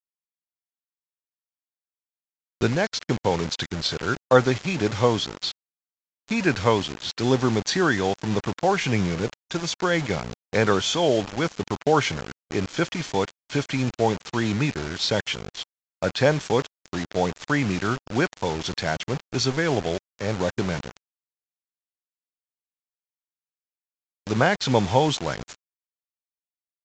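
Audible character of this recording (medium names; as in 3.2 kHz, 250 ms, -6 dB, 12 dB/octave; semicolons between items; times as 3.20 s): a quantiser's noise floor 6-bit, dither none; AAC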